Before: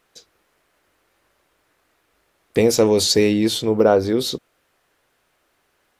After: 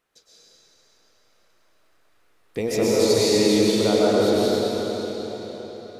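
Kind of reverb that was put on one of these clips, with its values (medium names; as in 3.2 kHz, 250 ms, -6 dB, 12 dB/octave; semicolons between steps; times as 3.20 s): algorithmic reverb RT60 4.7 s, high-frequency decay 0.9×, pre-delay 85 ms, DRR -8.5 dB; trim -10.5 dB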